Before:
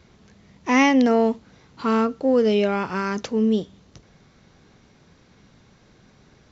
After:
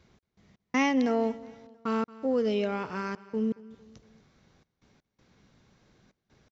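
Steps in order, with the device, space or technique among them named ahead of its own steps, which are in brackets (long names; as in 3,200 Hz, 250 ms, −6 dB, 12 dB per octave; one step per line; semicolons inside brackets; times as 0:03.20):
trance gate with a delay (gate pattern "x.x.xxxx" 81 BPM −60 dB; repeating echo 227 ms, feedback 46%, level −20 dB)
level −8.5 dB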